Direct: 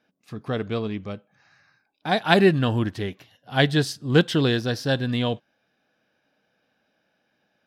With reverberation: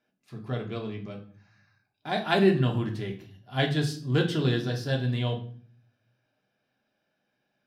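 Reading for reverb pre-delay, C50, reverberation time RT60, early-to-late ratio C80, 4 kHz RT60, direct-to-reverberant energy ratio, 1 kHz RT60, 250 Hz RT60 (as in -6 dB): 3 ms, 11.0 dB, 0.45 s, 15.0 dB, 0.40 s, 1.0 dB, 0.45 s, 0.85 s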